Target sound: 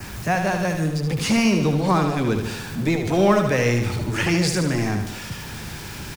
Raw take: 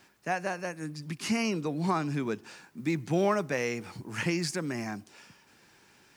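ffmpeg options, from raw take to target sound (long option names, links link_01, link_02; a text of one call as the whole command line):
ffmpeg -i in.wav -filter_complex "[0:a]aeval=exprs='val(0)+0.5*0.00944*sgn(val(0))':channel_layout=same,adynamicequalizer=threshold=0.00224:dfrequency=3500:dqfactor=3.9:tfrequency=3500:tqfactor=3.9:attack=5:release=100:ratio=0.375:range=2.5:mode=boostabove:tftype=bell,acrossover=split=130|890|1700[link_01][link_02][link_03][link_04];[link_01]aeval=exprs='0.0251*sin(PI/2*5.62*val(0)/0.0251)':channel_layout=same[link_05];[link_05][link_02][link_03][link_04]amix=inputs=4:normalize=0,aecho=1:1:75|150|225|300|375|450|525:0.447|0.255|0.145|0.0827|0.0472|0.0269|0.0153,volume=7dB" out.wav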